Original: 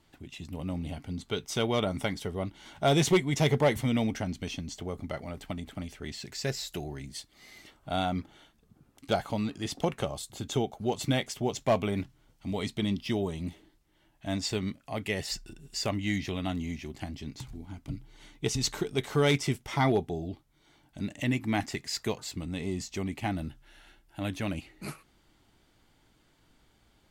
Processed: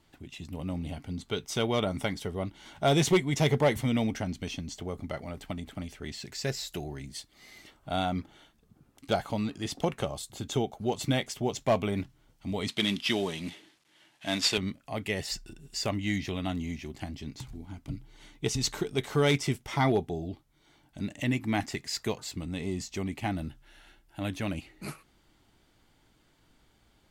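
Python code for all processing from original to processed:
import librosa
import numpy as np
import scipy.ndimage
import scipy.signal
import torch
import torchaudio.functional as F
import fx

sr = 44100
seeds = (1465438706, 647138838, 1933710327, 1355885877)

y = fx.chain(x, sr, fx.cvsd(bps=64000),
    fx.highpass(hz=160.0, slope=12),
    fx.peak_eq(hz=2900.0, db=10.5, octaves=2.5), at=(12.68, 14.58))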